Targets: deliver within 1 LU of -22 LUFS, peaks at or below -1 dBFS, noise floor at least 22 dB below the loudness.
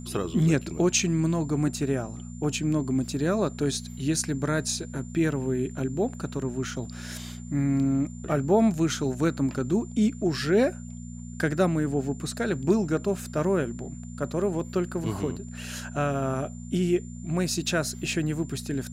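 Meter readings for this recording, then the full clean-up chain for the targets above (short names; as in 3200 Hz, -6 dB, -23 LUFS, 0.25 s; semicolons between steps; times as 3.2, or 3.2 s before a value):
hum 60 Hz; harmonics up to 240 Hz; hum level -36 dBFS; steady tone 7200 Hz; tone level -50 dBFS; loudness -27.0 LUFS; peak -9.0 dBFS; loudness target -22.0 LUFS
-> de-hum 60 Hz, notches 4; notch 7200 Hz, Q 30; gain +5 dB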